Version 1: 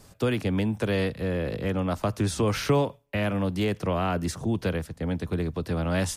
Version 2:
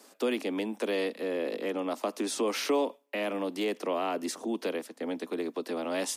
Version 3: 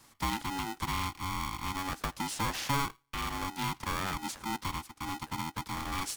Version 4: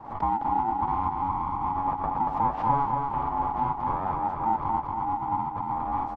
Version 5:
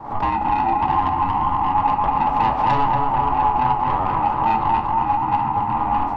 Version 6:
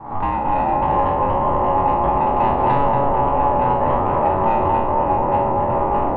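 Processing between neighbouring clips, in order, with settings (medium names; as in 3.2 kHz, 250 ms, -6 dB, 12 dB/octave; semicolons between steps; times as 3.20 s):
in parallel at -2 dB: peak limiter -21 dBFS, peak gain reduction 9.5 dB; on the sum: dynamic bell 1.5 kHz, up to -7 dB, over -46 dBFS, Q 3.4; steep high-pass 240 Hz 48 dB/octave; trim -5.5 dB
polarity switched at an audio rate 560 Hz; trim -3.5 dB
resonant low-pass 840 Hz, resonance Q 4.9; feedback delay 234 ms, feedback 59%, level -4 dB; swell ahead of each attack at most 100 dB/s
saturation -22 dBFS, distortion -15 dB; repeats whose band climbs or falls 480 ms, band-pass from 710 Hz, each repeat 0.7 oct, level -6 dB; simulated room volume 62 m³, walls mixed, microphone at 0.36 m; trim +8 dB
spectral sustain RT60 0.66 s; ever faster or slower copies 211 ms, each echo -7 st, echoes 3, each echo -6 dB; distance through air 420 m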